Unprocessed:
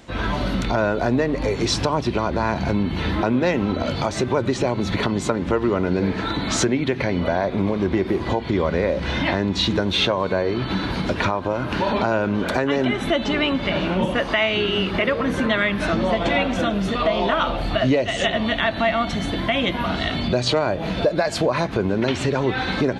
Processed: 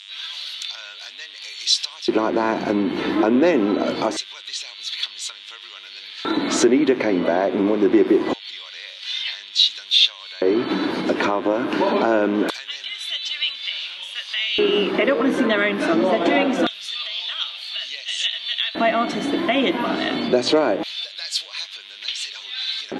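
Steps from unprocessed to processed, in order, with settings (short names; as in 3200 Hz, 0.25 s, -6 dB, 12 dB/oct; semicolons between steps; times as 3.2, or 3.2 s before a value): buzz 100 Hz, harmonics 38, -40 dBFS -2 dB/oct; LFO high-pass square 0.24 Hz 310–3600 Hz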